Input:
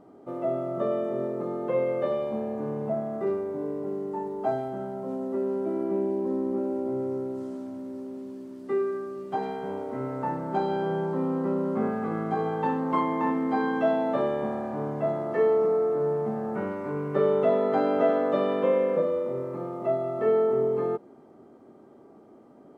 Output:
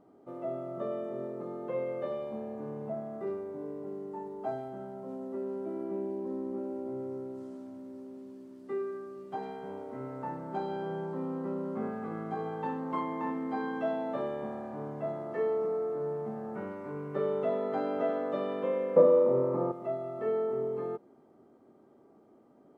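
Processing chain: 18.96–19.72 s: graphic EQ 125/250/500/1000 Hz +8/+8/+9/+12 dB; trim -8 dB

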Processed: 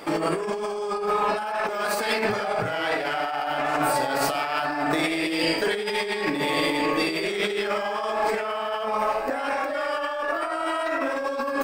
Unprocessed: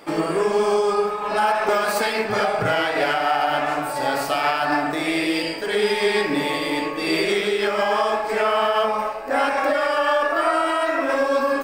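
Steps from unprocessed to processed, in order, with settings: compressor with a negative ratio -26 dBFS, ratio -1

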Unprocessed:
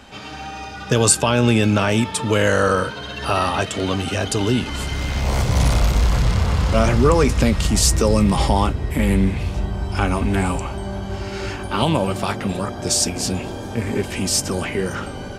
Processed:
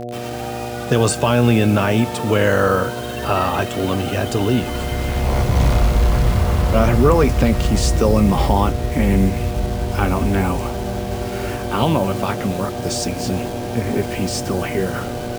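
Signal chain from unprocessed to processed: low-pass 2.5 kHz 6 dB/octave; word length cut 6-bit, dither none; mains buzz 120 Hz, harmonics 6, -30 dBFS 0 dB/octave; trim +1.5 dB

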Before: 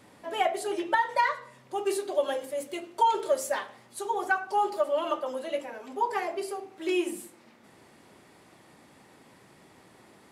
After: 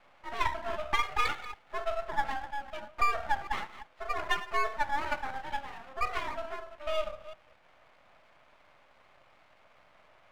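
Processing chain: chunks repeated in reverse 193 ms, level -14 dB; mistuned SSB +270 Hz 290–2600 Hz; half-wave rectifier

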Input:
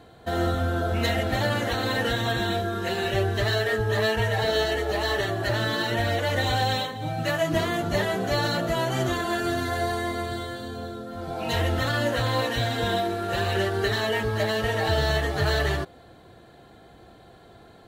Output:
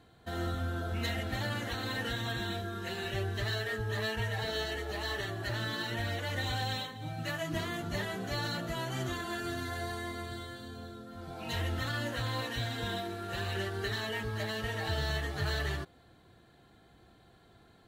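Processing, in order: peaking EQ 570 Hz -6.5 dB 1.3 oct; trim -8 dB

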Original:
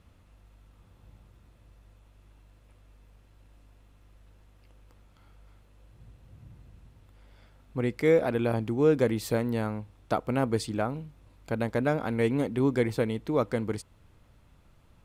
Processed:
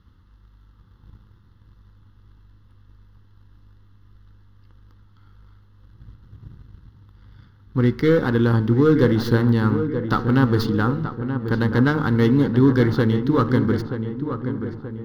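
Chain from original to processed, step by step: tracing distortion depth 0.079 ms; treble shelf 4.9 kHz -8.5 dB; de-hum 75.2 Hz, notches 35; waveshaping leveller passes 1; static phaser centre 2.4 kHz, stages 6; in parallel at -9 dB: hysteresis with a dead band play -39 dBFS; on the sum: filtered feedback delay 929 ms, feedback 52%, low-pass 1.8 kHz, level -8.5 dB; on a send at -24 dB: reverberation RT60 1.9 s, pre-delay 40 ms; on the sum: trim +7 dB

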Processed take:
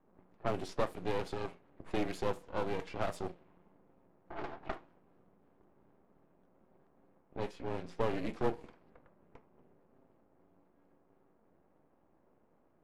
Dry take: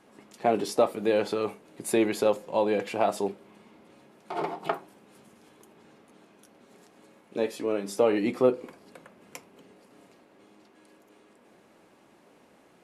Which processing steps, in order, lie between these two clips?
frequency shift -26 Hz; half-wave rectifier; level-controlled noise filter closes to 1 kHz, open at -24 dBFS; trim -6.5 dB

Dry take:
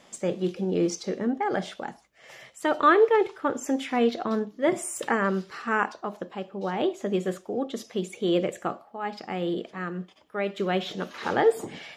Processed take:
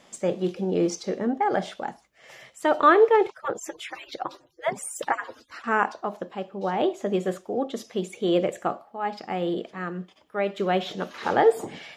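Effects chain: 3.30–5.64 s: harmonic-percussive separation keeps percussive; dynamic bell 730 Hz, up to +5 dB, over -38 dBFS, Q 1.2

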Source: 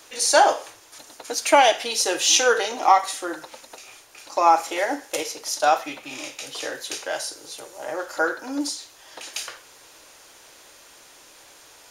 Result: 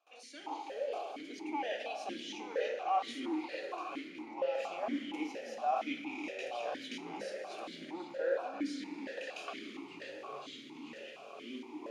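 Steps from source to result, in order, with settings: gate with hold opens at -39 dBFS; reverse; compression 8:1, threshold -31 dBFS, peak gain reduction 20.5 dB; reverse; ever faster or slower copies 237 ms, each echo -6 st, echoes 3, each echo -6 dB; plate-style reverb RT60 4.7 s, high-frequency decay 0.6×, DRR 5.5 dB; stepped vowel filter 4.3 Hz; trim +5.5 dB

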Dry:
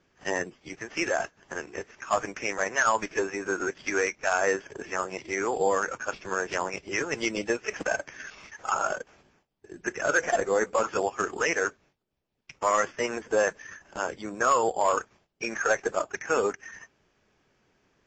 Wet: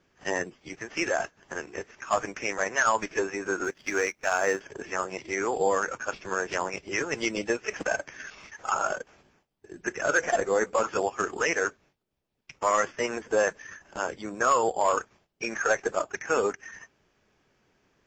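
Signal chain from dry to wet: 3.64–4.61 s: companding laws mixed up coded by A

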